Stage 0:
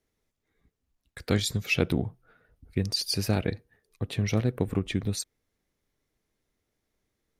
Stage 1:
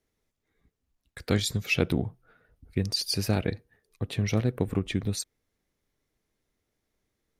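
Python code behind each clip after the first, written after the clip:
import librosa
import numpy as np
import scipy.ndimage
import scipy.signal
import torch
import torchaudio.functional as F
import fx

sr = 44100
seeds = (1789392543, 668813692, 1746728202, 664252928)

y = x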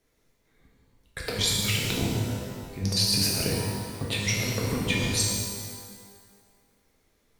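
y = fx.over_compress(x, sr, threshold_db=-30.0, ratio=-0.5)
y = fx.rev_shimmer(y, sr, seeds[0], rt60_s=1.7, semitones=12, shimmer_db=-8, drr_db=-3.5)
y = y * 10.0 ** (1.5 / 20.0)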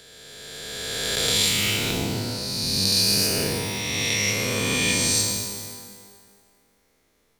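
y = fx.spec_swells(x, sr, rise_s=2.72)
y = fx.low_shelf(y, sr, hz=140.0, db=-8.5)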